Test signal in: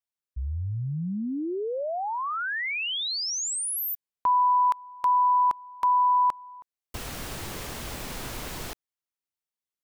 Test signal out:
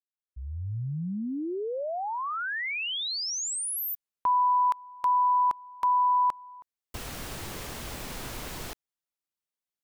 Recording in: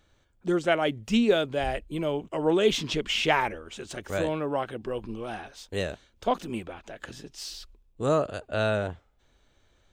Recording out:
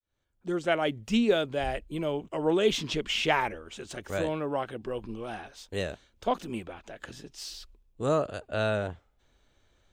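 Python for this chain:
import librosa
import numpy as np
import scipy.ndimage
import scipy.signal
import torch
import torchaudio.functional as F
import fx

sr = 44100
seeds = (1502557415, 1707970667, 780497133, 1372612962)

y = fx.fade_in_head(x, sr, length_s=0.76)
y = F.gain(torch.from_numpy(y), -2.0).numpy()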